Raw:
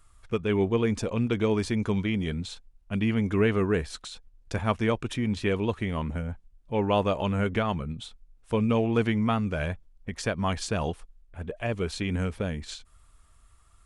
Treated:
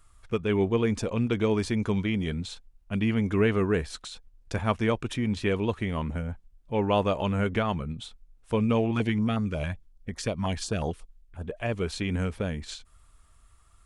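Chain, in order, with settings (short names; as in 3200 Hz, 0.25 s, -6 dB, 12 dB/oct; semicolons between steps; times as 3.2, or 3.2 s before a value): 8.91–11.48 stepped notch 11 Hz 450–2700 Hz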